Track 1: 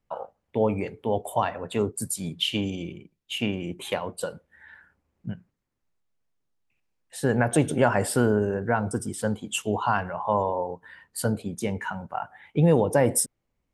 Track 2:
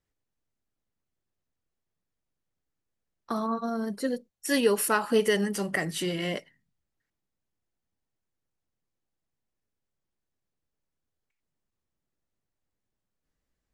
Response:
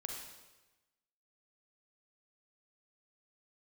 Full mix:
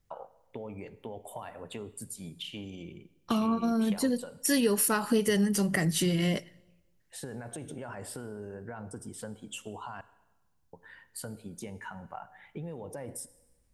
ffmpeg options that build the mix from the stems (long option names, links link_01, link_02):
-filter_complex "[0:a]alimiter=limit=-16.5dB:level=0:latency=1:release=15,acompressor=threshold=-34dB:ratio=5,volume=-6dB,asplit=3[link_01][link_02][link_03];[link_01]atrim=end=10.01,asetpts=PTS-STARTPTS,afade=type=out:start_time=10.006:duration=0.004:curve=hsin[link_04];[link_02]atrim=start=10.01:end=10.73,asetpts=PTS-STARTPTS,volume=0[link_05];[link_03]atrim=start=10.73,asetpts=PTS-STARTPTS,afade=type=in:duration=0.004:curve=hsin[link_06];[link_04][link_05][link_06]concat=n=3:v=0:a=1,asplit=2[link_07][link_08];[link_08]volume=-11.5dB[link_09];[1:a]bass=frequency=250:gain=12,treble=frequency=4000:gain=7,bandreject=frequency=8000:width=19,volume=0.5dB,asplit=2[link_10][link_11];[link_11]volume=-22.5dB[link_12];[2:a]atrim=start_sample=2205[link_13];[link_09][link_12]amix=inputs=2:normalize=0[link_14];[link_14][link_13]afir=irnorm=-1:irlink=0[link_15];[link_07][link_10][link_15]amix=inputs=3:normalize=0,acompressor=threshold=-25dB:ratio=2.5"